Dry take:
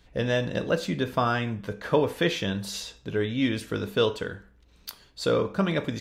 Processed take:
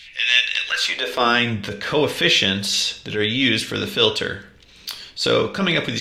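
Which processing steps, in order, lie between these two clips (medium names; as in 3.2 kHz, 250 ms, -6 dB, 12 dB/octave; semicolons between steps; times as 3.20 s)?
frequency weighting D; in parallel at -1 dB: compression, threshold -35 dBFS, peak gain reduction 19 dB; on the sum: high-pass sweep 2.3 kHz -> 74 Hz, 0.65–1.66 s; added noise brown -63 dBFS; transient shaper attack -8 dB, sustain +1 dB; on a send at -18 dB: reverberation RT60 0.70 s, pre-delay 4 ms; on the sum: trim +4.5 dB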